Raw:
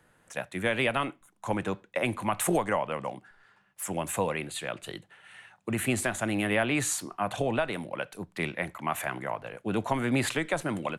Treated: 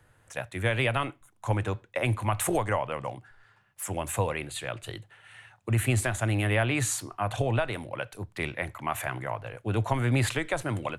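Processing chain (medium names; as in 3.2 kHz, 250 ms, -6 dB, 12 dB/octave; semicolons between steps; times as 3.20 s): resonant low shelf 140 Hz +6.5 dB, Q 3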